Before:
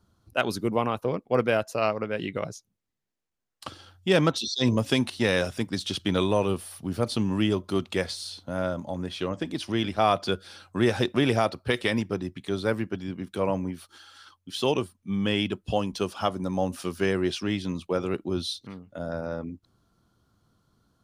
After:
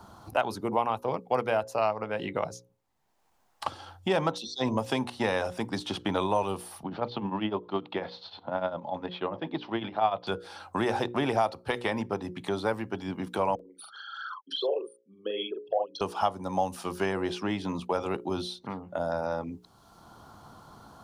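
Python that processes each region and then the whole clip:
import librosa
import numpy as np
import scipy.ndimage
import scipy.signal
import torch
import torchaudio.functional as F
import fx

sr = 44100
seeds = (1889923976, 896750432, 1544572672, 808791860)

y = fx.chain(x, sr, fx.ellip_bandpass(low_hz=120.0, high_hz=3800.0, order=3, stop_db=40),
    fx.tremolo_shape(shape='triangle', hz=10.0, depth_pct=85), at=(6.83, 10.27))
y = fx.chain(y, sr, fx.envelope_sharpen(power=3.0),
    fx.highpass(hz=480.0, slope=24),
    fx.doubler(ms=43.0, db=-3), at=(13.55, 16.01))
y = fx.peak_eq(y, sr, hz=850.0, db=14.5, octaves=0.92)
y = fx.hum_notches(y, sr, base_hz=60, count=9)
y = fx.band_squash(y, sr, depth_pct=70)
y = y * 10.0 ** (-6.5 / 20.0)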